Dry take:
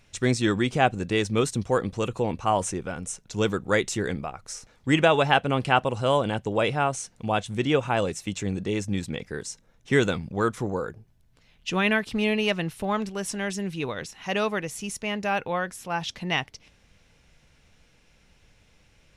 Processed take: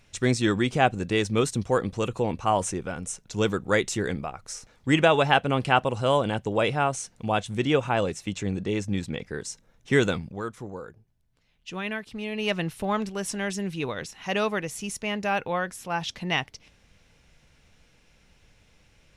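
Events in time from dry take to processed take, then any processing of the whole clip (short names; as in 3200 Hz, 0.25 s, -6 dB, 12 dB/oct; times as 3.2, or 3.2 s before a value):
7.89–9.45 high shelf 8100 Hz -7.5 dB
10.17–12.56 dip -9 dB, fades 0.25 s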